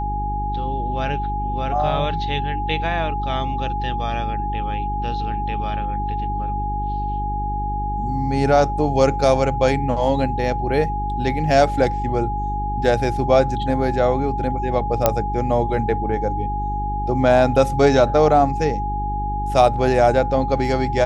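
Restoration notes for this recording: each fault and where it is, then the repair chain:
hum 50 Hz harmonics 8 -26 dBFS
tone 830 Hz -24 dBFS
15.06 pop 0 dBFS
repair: de-click; de-hum 50 Hz, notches 8; notch 830 Hz, Q 30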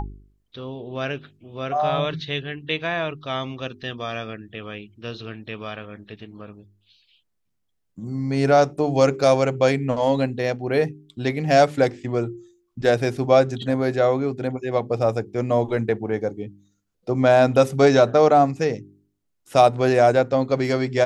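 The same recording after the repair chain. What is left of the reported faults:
15.06 pop

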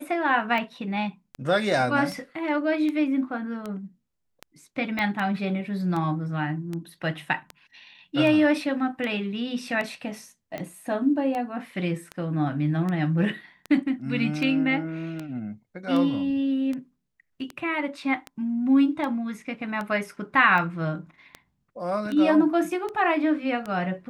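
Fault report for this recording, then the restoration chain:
tick 78 rpm -19 dBFS
4.99 pop -15 dBFS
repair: de-click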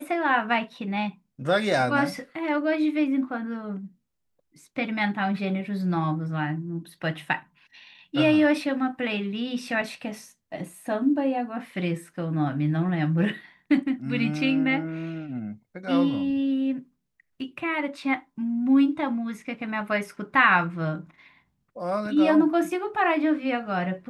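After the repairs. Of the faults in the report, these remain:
4.99 pop

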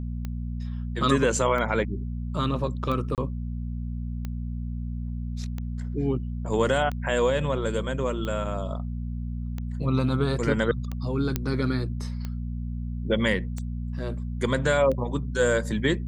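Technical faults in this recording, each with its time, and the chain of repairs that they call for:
hum 60 Hz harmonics 4 -31 dBFS
tick 45 rpm -20 dBFS
3.15–3.18 gap 28 ms
11.36 pop -10 dBFS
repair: de-click; de-hum 60 Hz, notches 4; interpolate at 3.15, 28 ms

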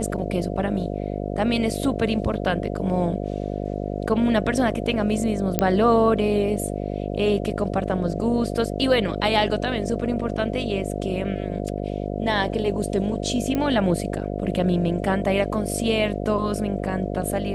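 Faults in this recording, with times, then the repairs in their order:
buzz 50 Hz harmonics 14 -28 dBFS
5.59 pop -3 dBFS
13.55 pop -12 dBFS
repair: de-click; de-hum 50 Hz, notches 14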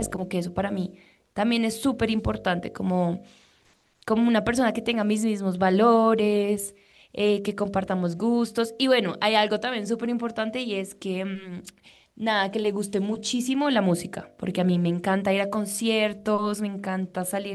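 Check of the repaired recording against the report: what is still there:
none

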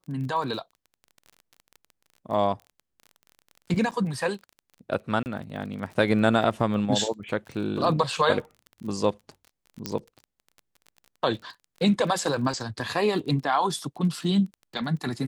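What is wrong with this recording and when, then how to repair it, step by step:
crackle 31/s -36 dBFS
3.91–3.92 gap 6.7 ms
5.23–5.26 gap 29 ms
9.86 pop -13 dBFS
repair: de-click; interpolate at 3.91, 6.7 ms; interpolate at 5.23, 29 ms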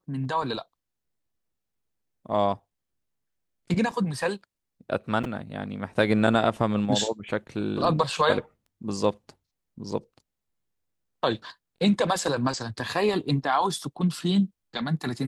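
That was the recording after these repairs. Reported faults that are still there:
none

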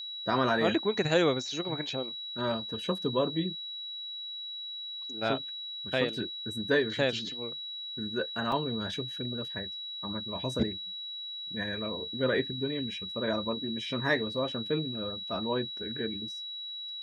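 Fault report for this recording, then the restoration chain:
tone 3900 Hz -37 dBFS
8.52 gap 2.3 ms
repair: notch 3900 Hz, Q 30; interpolate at 8.52, 2.3 ms

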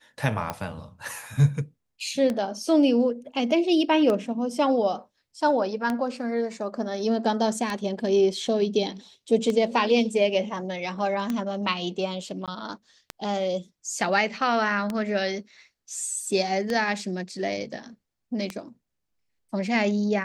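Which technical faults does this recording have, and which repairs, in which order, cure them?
tick 33 1/3 rpm -14 dBFS
12.46–12.48 gap 17 ms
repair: de-click; interpolate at 12.46, 17 ms

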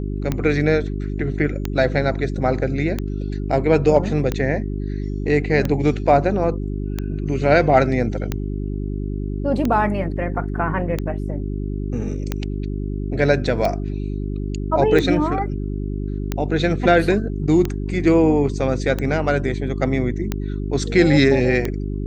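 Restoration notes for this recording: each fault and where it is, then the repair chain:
hum 50 Hz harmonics 8 -25 dBFS
tick 45 rpm -9 dBFS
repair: de-click; de-hum 50 Hz, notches 8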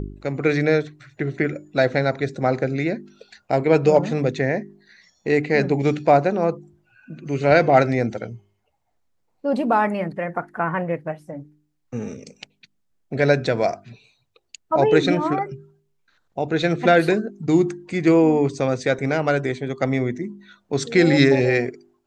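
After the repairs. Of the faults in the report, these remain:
none

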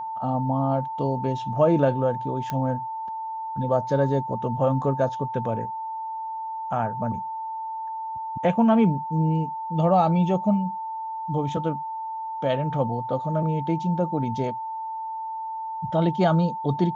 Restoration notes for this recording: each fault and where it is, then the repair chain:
tone 890 Hz -29 dBFS
2.5 pop -15 dBFS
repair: de-click; notch 890 Hz, Q 30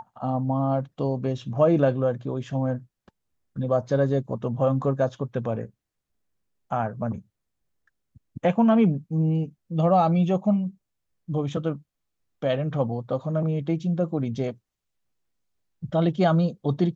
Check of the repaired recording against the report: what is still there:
none

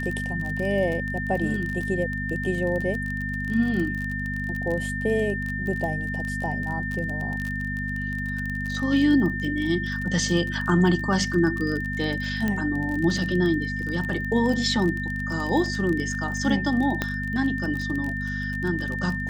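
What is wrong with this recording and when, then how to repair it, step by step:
crackle 27/s -28 dBFS
hum 50 Hz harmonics 5 -31 dBFS
tone 1800 Hz -30 dBFS
12.48 pop -13 dBFS
17.02 pop -10 dBFS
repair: de-click; de-hum 50 Hz, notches 5; notch 1800 Hz, Q 30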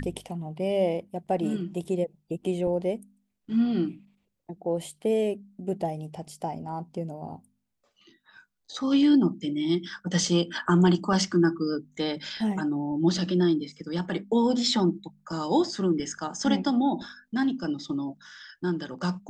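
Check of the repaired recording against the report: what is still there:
none

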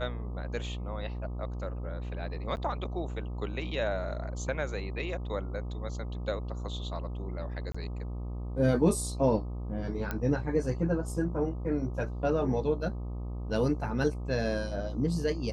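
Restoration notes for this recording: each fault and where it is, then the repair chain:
buzz 60 Hz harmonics 21 -36 dBFS
2.56–2.57 gap 9.4 ms
7.72–7.75 gap 25 ms
10.11 pop -18 dBFS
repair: de-click; de-hum 60 Hz, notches 21; interpolate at 2.56, 9.4 ms; interpolate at 7.72, 25 ms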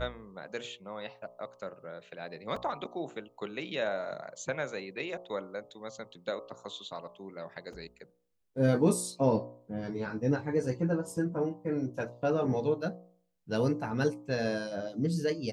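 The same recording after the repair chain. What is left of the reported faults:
none

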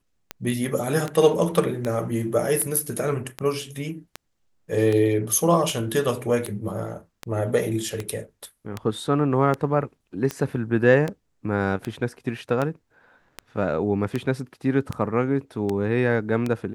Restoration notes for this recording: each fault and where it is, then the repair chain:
tick 78 rpm -13 dBFS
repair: de-click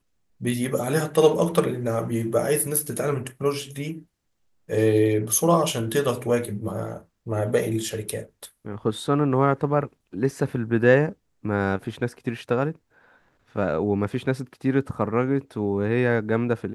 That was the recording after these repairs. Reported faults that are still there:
none

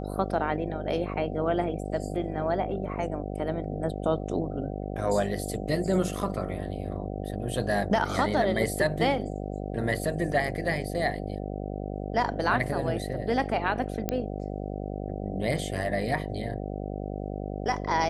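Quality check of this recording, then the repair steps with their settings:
buzz 50 Hz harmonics 15 -34 dBFS
14.09 pop -12 dBFS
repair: de-click; de-hum 50 Hz, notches 15

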